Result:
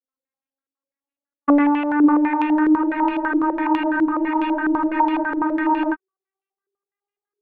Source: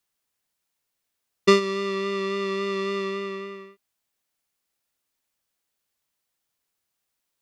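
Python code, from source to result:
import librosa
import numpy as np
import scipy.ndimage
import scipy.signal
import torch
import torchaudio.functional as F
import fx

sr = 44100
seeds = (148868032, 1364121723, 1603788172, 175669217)

y = fx.vocoder_glide(x, sr, note=60, semitones=8)
y = fx.peak_eq(y, sr, hz=140.0, db=-10.5, octaves=0.77)
y = fx.leveller(y, sr, passes=3)
y = fx.rider(y, sr, range_db=10, speed_s=0.5)
y = fx.formant_shift(y, sr, semitones=-2)
y = fx.air_absorb(y, sr, metres=380.0)
y = fx.echo_multitap(y, sr, ms=(111, 555), db=(-8.5, -9.5))
y = fx.spec_freeze(y, sr, seeds[0], at_s=2.79, hold_s=3.14)
y = fx.filter_held_lowpass(y, sr, hz=12.0, low_hz=410.0, high_hz=2700.0)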